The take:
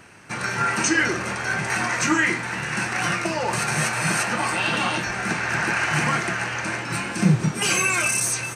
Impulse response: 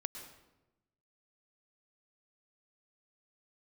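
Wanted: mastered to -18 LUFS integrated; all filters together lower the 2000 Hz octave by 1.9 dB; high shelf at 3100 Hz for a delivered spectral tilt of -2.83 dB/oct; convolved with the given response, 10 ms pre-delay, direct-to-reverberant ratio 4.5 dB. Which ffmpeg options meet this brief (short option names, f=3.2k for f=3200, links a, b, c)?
-filter_complex "[0:a]equalizer=f=2k:t=o:g=-4,highshelf=f=3.1k:g=4,asplit=2[a][b];[1:a]atrim=start_sample=2205,adelay=10[c];[b][c]afir=irnorm=-1:irlink=0,volume=-3.5dB[d];[a][d]amix=inputs=2:normalize=0,volume=3dB"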